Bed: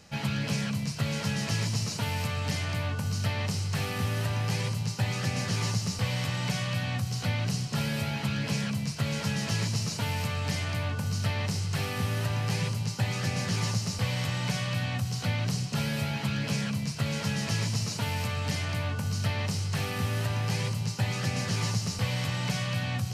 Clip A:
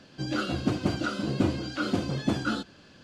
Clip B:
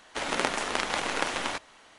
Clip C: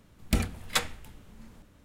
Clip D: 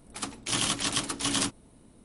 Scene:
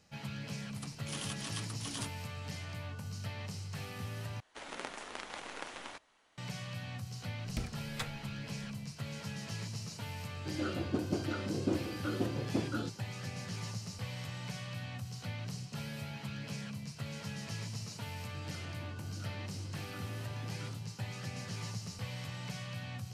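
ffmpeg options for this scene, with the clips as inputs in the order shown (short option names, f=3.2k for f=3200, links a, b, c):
-filter_complex "[1:a]asplit=2[a][b];[0:a]volume=-12dB[c];[3:a]highshelf=f=9.3k:g=-9.5[d];[a]equalizer=f=410:w=1.1:g=8[e];[b]acompressor=threshold=-37dB:ratio=6:attack=3.2:release=140:knee=1:detection=peak[f];[c]asplit=2[g][h];[g]atrim=end=4.404[i];[2:a]atrim=end=1.98,asetpts=PTS-STARTPTS,volume=-15dB[j];[h]atrim=start=6.376[k];[4:a]atrim=end=2.04,asetpts=PTS-STARTPTS,volume=-14.5dB,afade=t=in:d=0.004:c=hsin,afade=t=out:st=2.036:d=0.004:c=hsin,adelay=600[l];[d]atrim=end=1.84,asetpts=PTS-STARTPTS,volume=-12.5dB,afade=t=in:d=0.004:c=hsin,afade=t=out:st=1.836:d=0.004:c=hsin,adelay=7240[m];[e]atrim=end=3.03,asetpts=PTS-STARTPTS,volume=-11.5dB,afade=t=in:d=0.004:c=hsin,afade=t=out:st=3.026:d=0.004:c=hsin,adelay=10270[n];[f]atrim=end=3.03,asetpts=PTS-STARTPTS,volume=-12dB,afade=t=in:d=0.004:c=hsin,afade=t=out:st=3.026:d=0.004:c=hsin,adelay=18160[o];[i][j]acrossfade=d=0.004:c1=hsin:c2=hsin[p];[p][k]acrossfade=d=0.004:c1=hsin:c2=hsin[q];[q][l][m][n][o]amix=inputs=5:normalize=0"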